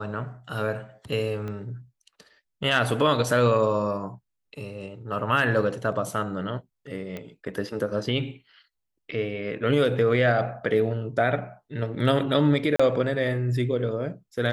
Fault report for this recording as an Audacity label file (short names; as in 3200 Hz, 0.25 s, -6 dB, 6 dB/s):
1.480000	1.480000	pop -23 dBFS
7.170000	7.170000	pop -21 dBFS
12.760000	12.790000	gap 35 ms